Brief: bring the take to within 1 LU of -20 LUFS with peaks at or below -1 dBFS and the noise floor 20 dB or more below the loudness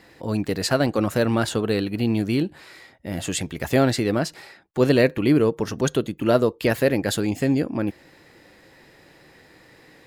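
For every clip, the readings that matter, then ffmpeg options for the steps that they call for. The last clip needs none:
loudness -22.5 LUFS; peak level -4.0 dBFS; loudness target -20.0 LUFS
-> -af "volume=1.33"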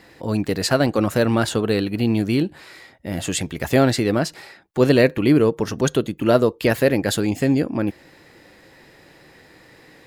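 loudness -20.0 LUFS; peak level -1.5 dBFS; noise floor -51 dBFS

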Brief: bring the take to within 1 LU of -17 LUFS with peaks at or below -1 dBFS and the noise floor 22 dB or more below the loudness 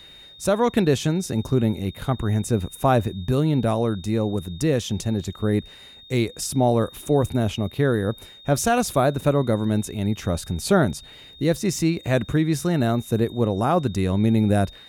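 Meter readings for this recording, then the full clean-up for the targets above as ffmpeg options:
steady tone 3.7 kHz; tone level -44 dBFS; loudness -23.0 LUFS; peak level -5.0 dBFS; loudness target -17.0 LUFS
-> -af "bandreject=f=3700:w=30"
-af "volume=2,alimiter=limit=0.891:level=0:latency=1"

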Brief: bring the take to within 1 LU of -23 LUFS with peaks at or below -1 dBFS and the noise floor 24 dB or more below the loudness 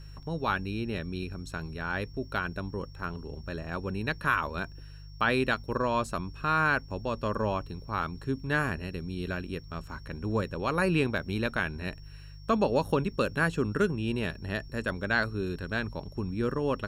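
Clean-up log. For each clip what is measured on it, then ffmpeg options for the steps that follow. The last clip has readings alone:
hum 50 Hz; highest harmonic 150 Hz; hum level -43 dBFS; steady tone 5.5 kHz; tone level -57 dBFS; loudness -31.0 LUFS; peak level -13.0 dBFS; loudness target -23.0 LUFS
-> -af "bandreject=f=50:t=h:w=4,bandreject=f=100:t=h:w=4,bandreject=f=150:t=h:w=4"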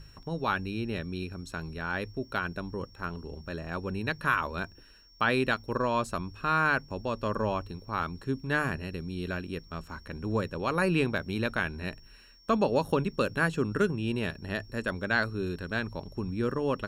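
hum not found; steady tone 5.5 kHz; tone level -57 dBFS
-> -af "bandreject=f=5500:w=30"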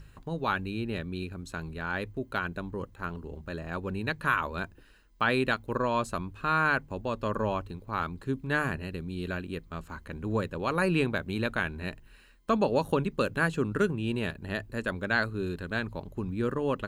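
steady tone not found; loudness -31.0 LUFS; peak level -13.0 dBFS; loudness target -23.0 LUFS
-> -af "volume=2.51"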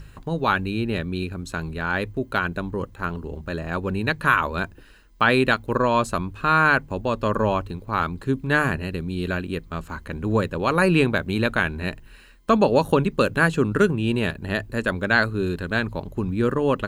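loudness -23.0 LUFS; peak level -5.0 dBFS; noise floor -48 dBFS

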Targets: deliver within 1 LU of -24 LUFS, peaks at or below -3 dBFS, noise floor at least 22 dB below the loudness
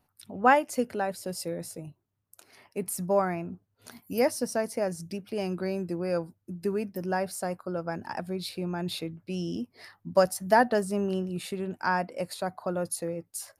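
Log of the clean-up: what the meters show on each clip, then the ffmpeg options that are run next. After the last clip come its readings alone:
loudness -30.0 LUFS; peak level -7.0 dBFS; loudness target -24.0 LUFS
-> -af "volume=2,alimiter=limit=0.708:level=0:latency=1"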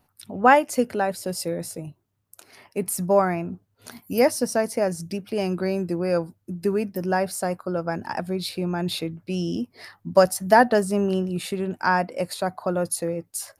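loudness -24.0 LUFS; peak level -3.0 dBFS; noise floor -69 dBFS

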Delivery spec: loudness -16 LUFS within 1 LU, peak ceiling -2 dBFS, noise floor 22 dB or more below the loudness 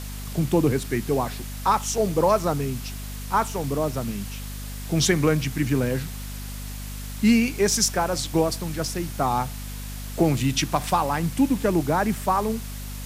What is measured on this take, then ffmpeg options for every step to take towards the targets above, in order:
hum 50 Hz; highest harmonic 250 Hz; hum level -32 dBFS; noise floor -34 dBFS; noise floor target -46 dBFS; loudness -24.0 LUFS; peak level -7.5 dBFS; loudness target -16.0 LUFS
-> -af "bandreject=f=50:t=h:w=4,bandreject=f=100:t=h:w=4,bandreject=f=150:t=h:w=4,bandreject=f=200:t=h:w=4,bandreject=f=250:t=h:w=4"
-af "afftdn=nr=12:nf=-34"
-af "volume=2.51,alimiter=limit=0.794:level=0:latency=1"

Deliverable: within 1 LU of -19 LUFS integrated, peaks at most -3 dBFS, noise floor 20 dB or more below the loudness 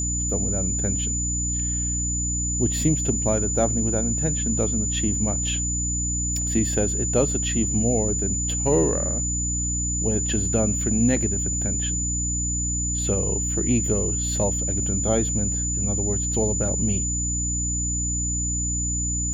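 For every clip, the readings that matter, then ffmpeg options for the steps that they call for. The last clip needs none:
hum 60 Hz; highest harmonic 300 Hz; hum level -26 dBFS; steady tone 7 kHz; tone level -25 dBFS; loudness -22.5 LUFS; peak level -8.0 dBFS; loudness target -19.0 LUFS
-> -af "bandreject=f=60:t=h:w=6,bandreject=f=120:t=h:w=6,bandreject=f=180:t=h:w=6,bandreject=f=240:t=h:w=6,bandreject=f=300:t=h:w=6"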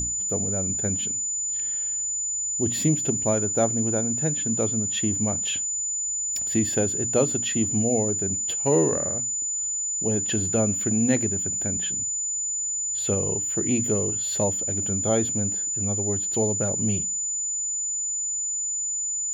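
hum not found; steady tone 7 kHz; tone level -25 dBFS
-> -af "bandreject=f=7000:w=30"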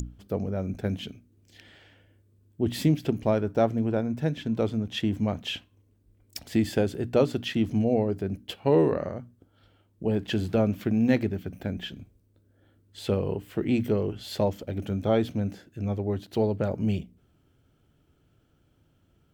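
steady tone not found; loudness -27.5 LUFS; peak level -9.5 dBFS; loudness target -19.0 LUFS
-> -af "volume=2.66,alimiter=limit=0.708:level=0:latency=1"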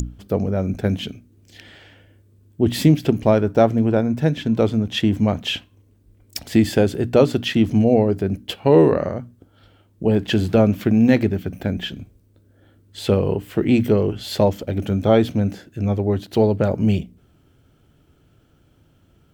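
loudness -19.5 LUFS; peak level -3.0 dBFS; noise floor -57 dBFS

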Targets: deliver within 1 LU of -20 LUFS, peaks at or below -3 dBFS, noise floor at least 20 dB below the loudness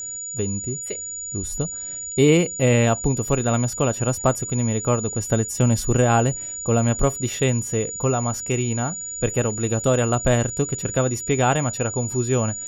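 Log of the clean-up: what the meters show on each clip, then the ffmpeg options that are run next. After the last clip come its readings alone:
steady tone 6.9 kHz; tone level -29 dBFS; loudness -22.0 LUFS; peak level -4.5 dBFS; loudness target -20.0 LUFS
-> -af "bandreject=f=6900:w=30"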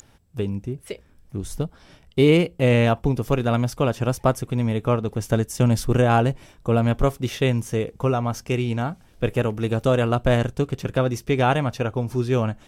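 steady tone not found; loudness -22.5 LUFS; peak level -4.0 dBFS; loudness target -20.0 LUFS
-> -af "volume=1.33,alimiter=limit=0.708:level=0:latency=1"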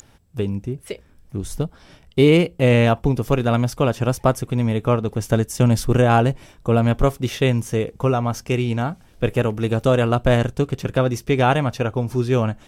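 loudness -20.0 LUFS; peak level -3.0 dBFS; noise floor -52 dBFS

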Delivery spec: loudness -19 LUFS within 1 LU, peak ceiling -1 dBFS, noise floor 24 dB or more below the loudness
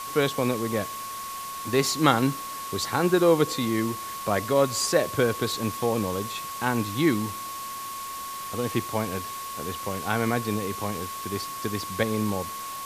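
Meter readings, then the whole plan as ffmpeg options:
steady tone 1.1 kHz; tone level -34 dBFS; noise floor -36 dBFS; noise floor target -51 dBFS; loudness -26.5 LUFS; peak level -4.5 dBFS; loudness target -19.0 LUFS
-> -af "bandreject=f=1100:w=30"
-af "afftdn=nr=15:nf=-36"
-af "volume=2.37,alimiter=limit=0.891:level=0:latency=1"

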